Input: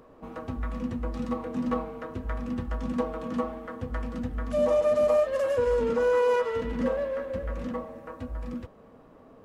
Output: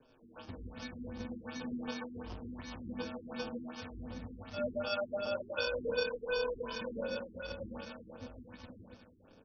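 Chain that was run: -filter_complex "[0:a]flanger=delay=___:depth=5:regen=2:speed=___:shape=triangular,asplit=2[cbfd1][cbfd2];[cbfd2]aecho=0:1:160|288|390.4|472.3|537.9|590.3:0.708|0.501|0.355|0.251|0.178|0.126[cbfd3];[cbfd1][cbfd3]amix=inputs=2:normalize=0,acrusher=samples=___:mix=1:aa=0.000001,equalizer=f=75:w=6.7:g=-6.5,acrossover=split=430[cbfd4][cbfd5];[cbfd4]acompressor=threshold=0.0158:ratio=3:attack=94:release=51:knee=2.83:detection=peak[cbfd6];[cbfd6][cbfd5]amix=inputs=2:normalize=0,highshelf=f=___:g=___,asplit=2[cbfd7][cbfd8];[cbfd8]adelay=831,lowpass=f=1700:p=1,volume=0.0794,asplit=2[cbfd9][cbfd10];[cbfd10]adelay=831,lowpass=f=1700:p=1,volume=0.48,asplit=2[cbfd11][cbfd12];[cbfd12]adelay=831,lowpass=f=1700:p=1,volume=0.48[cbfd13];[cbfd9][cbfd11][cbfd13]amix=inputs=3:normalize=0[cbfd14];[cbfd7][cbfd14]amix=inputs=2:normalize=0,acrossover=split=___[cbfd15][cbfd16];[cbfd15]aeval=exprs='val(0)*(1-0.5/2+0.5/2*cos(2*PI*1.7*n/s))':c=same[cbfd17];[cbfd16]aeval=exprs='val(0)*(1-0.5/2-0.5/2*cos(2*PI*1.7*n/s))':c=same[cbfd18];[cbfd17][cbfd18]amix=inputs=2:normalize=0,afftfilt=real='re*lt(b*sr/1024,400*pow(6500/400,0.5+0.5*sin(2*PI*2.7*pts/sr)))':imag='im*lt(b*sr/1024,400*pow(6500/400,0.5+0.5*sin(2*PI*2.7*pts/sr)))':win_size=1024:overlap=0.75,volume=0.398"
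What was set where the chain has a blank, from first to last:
7.3, 0.62, 22, 3900, 11.5, 820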